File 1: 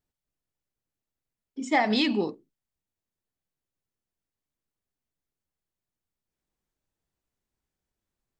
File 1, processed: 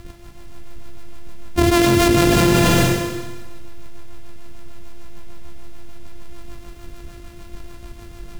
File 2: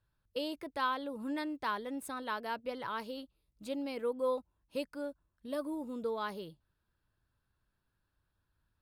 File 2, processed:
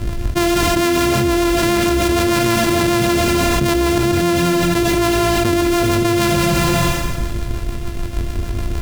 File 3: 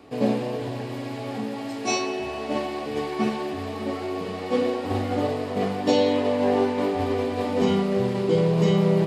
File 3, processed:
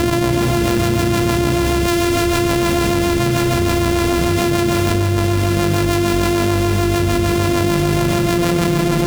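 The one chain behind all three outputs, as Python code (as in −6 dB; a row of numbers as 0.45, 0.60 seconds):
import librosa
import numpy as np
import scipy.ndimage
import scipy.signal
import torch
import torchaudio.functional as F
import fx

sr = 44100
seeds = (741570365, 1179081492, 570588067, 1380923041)

p1 = np.r_[np.sort(x[:len(x) // 128 * 128].reshape(-1, 128), axis=1).ravel(), x[len(x) // 128 * 128:]]
p2 = fx.low_shelf(p1, sr, hz=140.0, db=10.0)
p3 = fx.rotary(p2, sr, hz=6.7)
p4 = p3 + fx.echo_multitap(p3, sr, ms=(84, 93, 194, 257), db=(-18.5, -18.0, -10.5, -15.0), dry=0)
p5 = fx.rev_schroeder(p4, sr, rt60_s=1.3, comb_ms=31, drr_db=9.0)
p6 = fx.env_flatten(p5, sr, amount_pct=100)
y = librosa.util.normalize(p6) * 10.0 ** (-1.5 / 20.0)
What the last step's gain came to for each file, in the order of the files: +4.5, +12.5, −0.5 decibels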